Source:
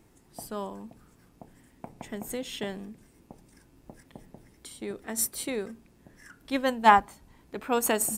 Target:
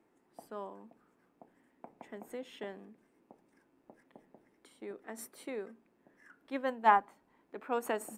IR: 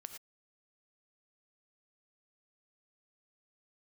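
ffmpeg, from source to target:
-filter_complex "[0:a]acrossover=split=220 2400:gain=0.0708 1 0.2[a][b][c];[a][b][c]amix=inputs=3:normalize=0,volume=-6.5dB"

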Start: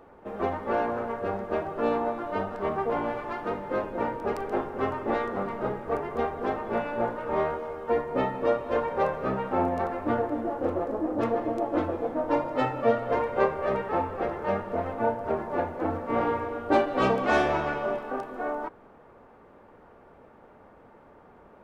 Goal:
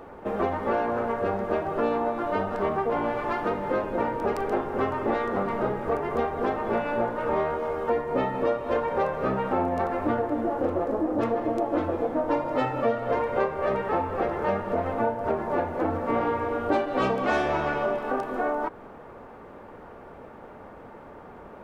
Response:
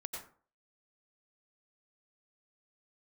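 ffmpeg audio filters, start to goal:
-af "acompressor=threshold=-33dB:ratio=3,volume=8.5dB"

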